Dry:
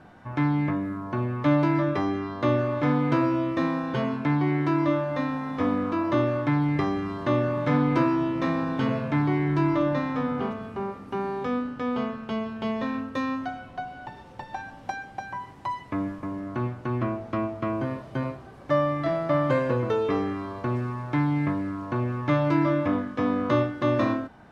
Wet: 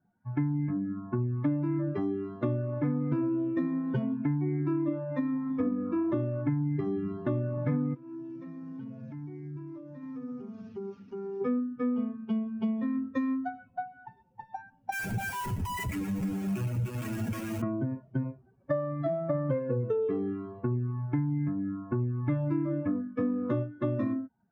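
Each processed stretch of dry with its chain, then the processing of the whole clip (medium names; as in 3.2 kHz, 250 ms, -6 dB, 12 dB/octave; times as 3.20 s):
7.94–11.41 s: one-bit delta coder 32 kbps, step -36.5 dBFS + compression 8:1, threshold -32 dBFS
14.92–17.62 s: peaking EQ 2.7 kHz +14.5 dB 0.92 oct + Schmitt trigger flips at -42 dBFS + delay 118 ms -6.5 dB
whole clip: expander on every frequency bin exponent 2; graphic EQ 125/250/500/1000/2000/4000 Hz +10/+9/+8/-4/+3/-12 dB; compression 6:1, threshold -27 dBFS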